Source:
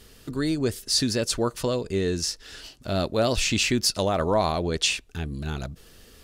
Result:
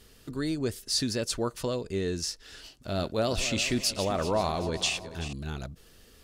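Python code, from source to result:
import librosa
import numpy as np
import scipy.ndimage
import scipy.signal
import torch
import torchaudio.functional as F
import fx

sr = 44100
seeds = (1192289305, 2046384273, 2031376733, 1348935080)

y = fx.reverse_delay_fb(x, sr, ms=192, feedback_pct=64, wet_db=-12, at=(2.79, 5.33))
y = y * 10.0 ** (-5.0 / 20.0)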